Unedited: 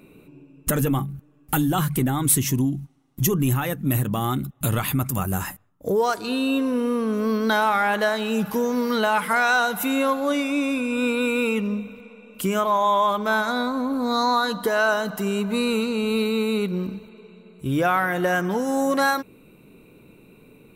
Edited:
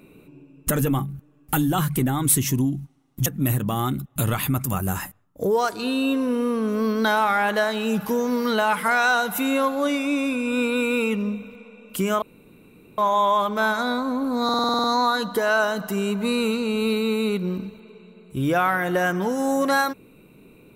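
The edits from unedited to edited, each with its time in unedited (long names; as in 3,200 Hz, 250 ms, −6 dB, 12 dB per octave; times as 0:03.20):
0:03.26–0:03.71: remove
0:12.67: splice in room tone 0.76 s
0:14.13: stutter 0.05 s, 9 plays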